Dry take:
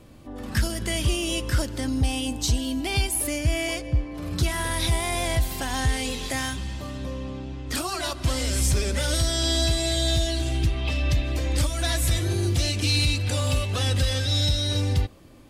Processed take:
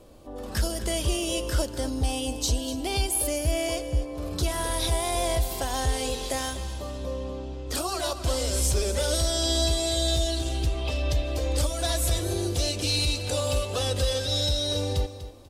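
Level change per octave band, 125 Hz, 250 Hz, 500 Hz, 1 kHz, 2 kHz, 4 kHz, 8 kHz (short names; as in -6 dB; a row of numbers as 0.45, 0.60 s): -4.5, -3.0, +3.0, +0.5, -6.0, -1.5, 0.0 dB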